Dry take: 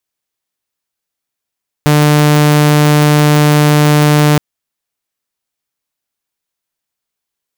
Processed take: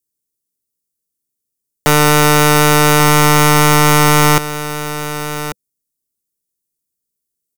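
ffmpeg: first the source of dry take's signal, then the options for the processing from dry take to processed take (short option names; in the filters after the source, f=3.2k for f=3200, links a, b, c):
-f lavfi -i "aevalsrc='0.668*(2*mod(149*t,1)-1)':d=2.52:s=44100"
-filter_complex "[0:a]firequalizer=gain_entry='entry(120,0);entry(190,2);entry(490,-2);entry(710,-27);entry(1200,-20);entry(2600,-16);entry(5000,-5);entry(8500,3)':delay=0.05:min_phase=1,aeval=exprs='(mod(1.88*val(0)+1,2)-1)/1.88':c=same,asplit=2[a][b];[b]aecho=0:1:1140:0.251[c];[a][c]amix=inputs=2:normalize=0"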